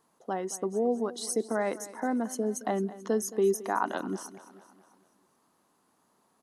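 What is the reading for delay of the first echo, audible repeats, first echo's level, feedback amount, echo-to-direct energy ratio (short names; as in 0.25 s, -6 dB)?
0.219 s, 4, -17.0 dB, 54%, -15.5 dB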